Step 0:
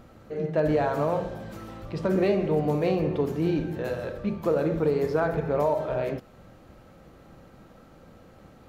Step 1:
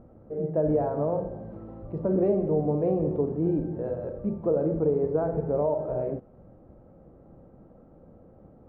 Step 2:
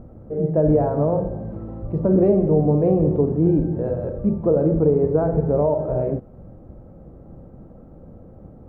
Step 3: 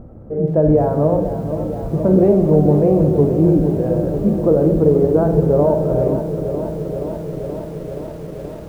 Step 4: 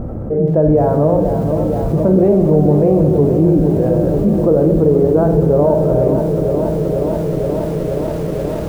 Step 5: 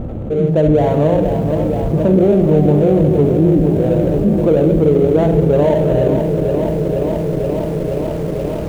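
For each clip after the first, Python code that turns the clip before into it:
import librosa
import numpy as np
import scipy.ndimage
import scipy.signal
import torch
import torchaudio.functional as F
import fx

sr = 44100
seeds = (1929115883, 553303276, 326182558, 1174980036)

y1 = scipy.signal.sosfilt(scipy.signal.cheby1(2, 1.0, 590.0, 'lowpass', fs=sr, output='sos'), x)
y2 = fx.low_shelf(y1, sr, hz=200.0, db=8.5)
y2 = y2 * librosa.db_to_amplitude(5.0)
y3 = fx.echo_crushed(y2, sr, ms=476, feedback_pct=80, bits=8, wet_db=-10.0)
y3 = y3 * librosa.db_to_amplitude(3.5)
y4 = fx.env_flatten(y3, sr, amount_pct=50)
y5 = scipy.signal.medfilt(y4, 25)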